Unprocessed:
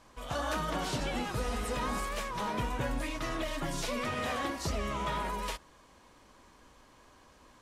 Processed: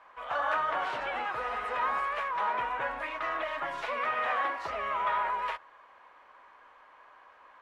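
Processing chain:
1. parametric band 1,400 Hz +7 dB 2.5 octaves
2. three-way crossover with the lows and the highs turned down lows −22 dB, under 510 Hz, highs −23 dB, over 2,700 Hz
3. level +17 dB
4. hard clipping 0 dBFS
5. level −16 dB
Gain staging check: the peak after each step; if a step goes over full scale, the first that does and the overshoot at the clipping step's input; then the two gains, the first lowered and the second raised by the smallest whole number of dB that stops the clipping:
−18.0, −18.5, −1.5, −1.5, −17.5 dBFS
no step passes full scale

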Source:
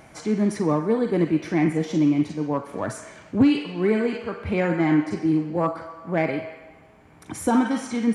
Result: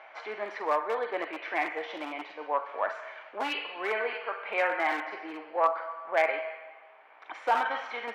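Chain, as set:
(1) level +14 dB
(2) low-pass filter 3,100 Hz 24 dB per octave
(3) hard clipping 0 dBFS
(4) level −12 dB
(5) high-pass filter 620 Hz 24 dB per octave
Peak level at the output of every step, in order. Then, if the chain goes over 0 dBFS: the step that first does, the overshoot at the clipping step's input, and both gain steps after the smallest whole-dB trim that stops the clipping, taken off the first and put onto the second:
+6.0, +6.0, 0.0, −12.0, −11.5 dBFS
step 1, 6.0 dB
step 1 +8 dB, step 4 −6 dB

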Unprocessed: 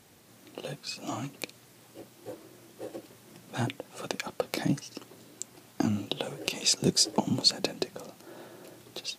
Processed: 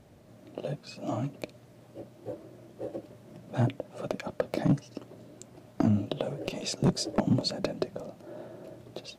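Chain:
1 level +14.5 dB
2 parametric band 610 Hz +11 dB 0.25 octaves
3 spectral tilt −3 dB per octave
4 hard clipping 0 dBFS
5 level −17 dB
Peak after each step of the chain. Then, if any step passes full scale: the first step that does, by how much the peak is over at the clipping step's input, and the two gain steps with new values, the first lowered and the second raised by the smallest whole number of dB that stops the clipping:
+8.5, +9.0, +9.5, 0.0, −17.0 dBFS
step 1, 9.5 dB
step 1 +4.5 dB, step 5 −7 dB

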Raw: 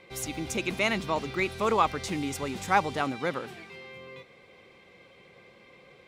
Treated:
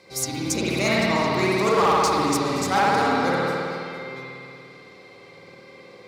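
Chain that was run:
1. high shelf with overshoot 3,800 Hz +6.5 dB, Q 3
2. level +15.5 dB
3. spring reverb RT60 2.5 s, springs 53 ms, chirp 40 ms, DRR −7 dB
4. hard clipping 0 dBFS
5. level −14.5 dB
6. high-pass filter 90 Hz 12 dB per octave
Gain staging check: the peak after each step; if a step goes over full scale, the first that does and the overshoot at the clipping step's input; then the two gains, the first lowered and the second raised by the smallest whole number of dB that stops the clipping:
−9.0, +6.5, +9.5, 0.0, −14.5, −11.0 dBFS
step 2, 9.5 dB
step 2 +5.5 dB, step 5 −4.5 dB

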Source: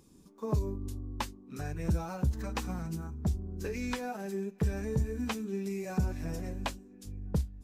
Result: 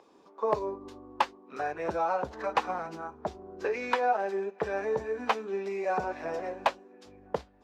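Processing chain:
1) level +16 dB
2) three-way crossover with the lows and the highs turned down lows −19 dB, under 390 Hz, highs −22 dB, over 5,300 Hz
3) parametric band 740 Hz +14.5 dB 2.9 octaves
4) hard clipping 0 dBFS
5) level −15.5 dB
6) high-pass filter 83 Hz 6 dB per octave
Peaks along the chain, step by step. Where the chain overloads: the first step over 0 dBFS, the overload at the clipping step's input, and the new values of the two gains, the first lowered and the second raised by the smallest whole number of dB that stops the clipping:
−3.5, −4.5, +8.0, 0.0, −15.5, −14.5 dBFS
step 3, 8.0 dB
step 1 +8 dB, step 5 −7.5 dB

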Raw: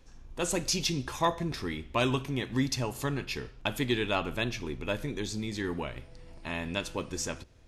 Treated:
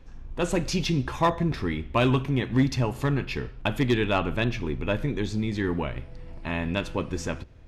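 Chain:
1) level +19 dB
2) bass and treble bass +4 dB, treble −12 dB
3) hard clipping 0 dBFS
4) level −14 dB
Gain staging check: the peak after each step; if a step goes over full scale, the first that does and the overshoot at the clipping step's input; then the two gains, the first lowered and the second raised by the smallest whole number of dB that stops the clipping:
+3.0, +4.5, 0.0, −14.0 dBFS
step 1, 4.5 dB
step 1 +14 dB, step 4 −9 dB

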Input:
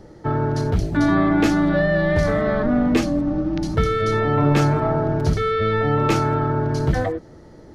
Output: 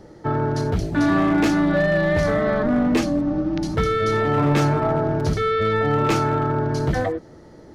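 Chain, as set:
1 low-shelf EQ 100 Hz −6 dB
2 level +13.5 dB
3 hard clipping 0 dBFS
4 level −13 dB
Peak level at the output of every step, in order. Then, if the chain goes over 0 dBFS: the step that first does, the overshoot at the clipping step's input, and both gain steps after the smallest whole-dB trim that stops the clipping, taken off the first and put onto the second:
−5.5, +8.0, 0.0, −13.0 dBFS
step 2, 8.0 dB
step 2 +5.5 dB, step 4 −5 dB

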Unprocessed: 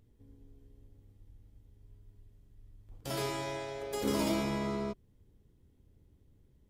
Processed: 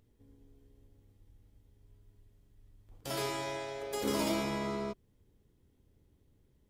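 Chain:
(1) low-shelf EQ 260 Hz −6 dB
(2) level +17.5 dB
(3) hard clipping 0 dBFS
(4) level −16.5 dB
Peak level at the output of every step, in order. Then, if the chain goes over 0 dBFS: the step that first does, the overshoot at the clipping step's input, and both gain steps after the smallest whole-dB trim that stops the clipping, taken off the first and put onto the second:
−21.0, −3.5, −3.5, −20.0 dBFS
no step passes full scale

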